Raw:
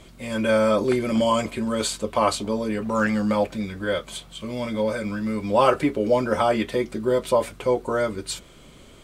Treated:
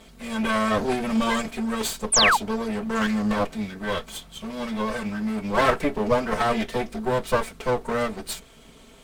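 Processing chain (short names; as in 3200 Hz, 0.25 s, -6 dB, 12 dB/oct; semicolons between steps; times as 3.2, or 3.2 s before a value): minimum comb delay 4.5 ms; painted sound fall, 2.12–2.37, 760–10000 Hz -18 dBFS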